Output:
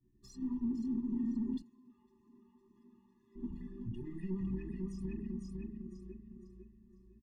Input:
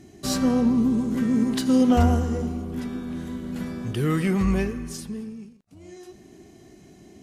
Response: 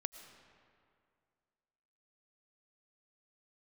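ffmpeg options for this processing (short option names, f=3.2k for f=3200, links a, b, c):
-filter_complex "[0:a]agate=range=-33dB:threshold=-40dB:ratio=3:detection=peak,tiltshelf=f=970:g=-6.5,bandreject=f=50:t=h:w=6,bandreject=f=100:t=h:w=6,bandreject=f=150:t=h:w=6,bandreject=f=200:t=h:w=6,bandreject=f=250:t=h:w=6,bandreject=f=300:t=h:w=6,bandreject=f=350:t=h:w=6,bandreject=f=400:t=h:w=6,bandreject=f=450:t=h:w=6,bandreject=f=500:t=h:w=6,aecho=1:1:505|1010|1515|2020|2525:0.562|0.247|0.109|0.0479|0.0211,acompressor=threshold=-29dB:ratio=6,asoftclip=type=tanh:threshold=-37dB,asettb=1/sr,asplit=3[a][b][c];[a]atrim=end=1.624[d];[b]atrim=start=1.62:end=3.36,asetpts=PTS-STARTPTS,afade=t=in:d=0.004:c=qsin,afade=t=out:st=1.736:d=0.004:c=qsin,highpass=310[e];[c]atrim=start=3.356[f];[d][e]acrossfade=d=0.004:c1=hsin:c2=qsin[g];[g][f]acrossfade=d=0.004:c1=qsin:c2=hsin,alimiter=level_in=17dB:limit=-24dB:level=0:latency=1:release=235,volume=-17dB,equalizer=f=1.5k:t=o:w=0.26:g=-8.5,anlmdn=3.98,afftfilt=real='re*eq(mod(floor(b*sr/1024/410),2),0)':imag='im*eq(mod(floor(b*sr/1024/410),2),0)':win_size=1024:overlap=0.75,volume=14dB"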